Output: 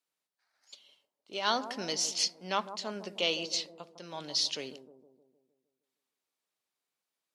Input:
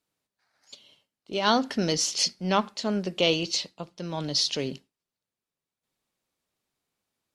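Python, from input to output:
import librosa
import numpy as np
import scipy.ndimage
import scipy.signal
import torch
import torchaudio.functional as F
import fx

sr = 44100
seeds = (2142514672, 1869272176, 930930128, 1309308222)

p1 = fx.highpass(x, sr, hz=700.0, slope=6)
p2 = p1 + fx.echo_bbd(p1, sr, ms=154, stages=1024, feedback_pct=53, wet_db=-11, dry=0)
y = F.gain(torch.from_numpy(p2), -4.5).numpy()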